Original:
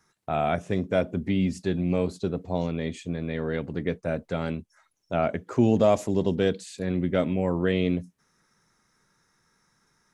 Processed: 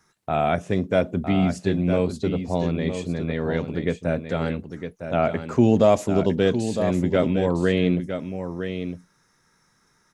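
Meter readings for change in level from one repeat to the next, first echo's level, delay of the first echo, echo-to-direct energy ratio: no regular repeats, -8.5 dB, 958 ms, -8.5 dB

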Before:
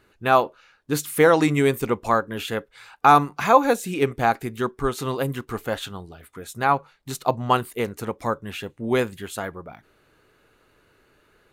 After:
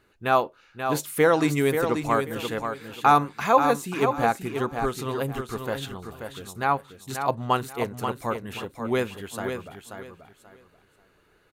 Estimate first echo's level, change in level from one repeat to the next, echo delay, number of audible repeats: -7.0 dB, -12.5 dB, 534 ms, 3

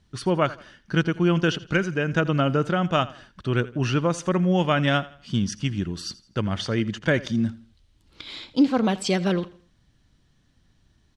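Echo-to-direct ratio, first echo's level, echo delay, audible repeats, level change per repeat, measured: -18.5 dB, -19.0 dB, 83 ms, 2, -9.0 dB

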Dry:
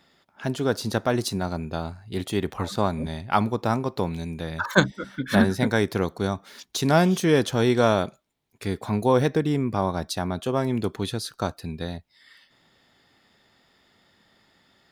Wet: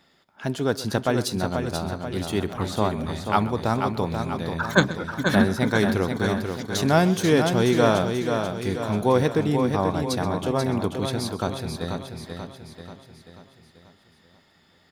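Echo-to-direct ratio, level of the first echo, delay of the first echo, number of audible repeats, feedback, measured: -4.5 dB, -17.5 dB, 128 ms, 8, no regular repeats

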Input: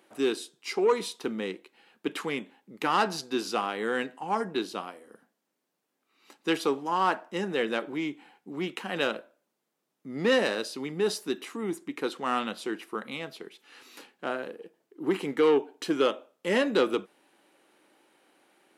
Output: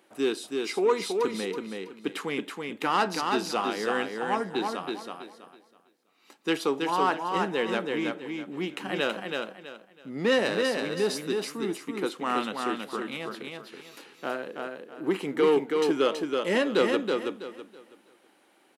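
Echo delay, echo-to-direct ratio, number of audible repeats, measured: 326 ms, -3.5 dB, 3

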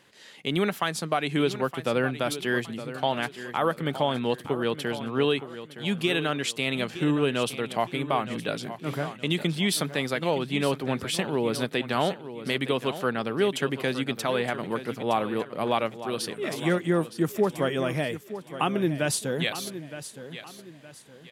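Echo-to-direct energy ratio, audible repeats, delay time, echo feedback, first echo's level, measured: -12.0 dB, 3, 916 ms, 35%, -12.5 dB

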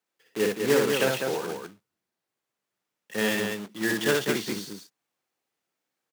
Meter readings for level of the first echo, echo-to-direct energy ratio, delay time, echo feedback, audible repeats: -3.0 dB, -0.5 dB, 60 ms, no regular repeats, 2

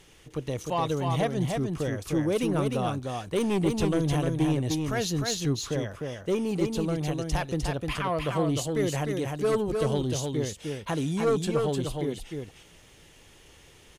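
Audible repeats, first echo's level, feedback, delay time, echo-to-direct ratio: 1, -4.0 dB, no regular repeats, 304 ms, -4.0 dB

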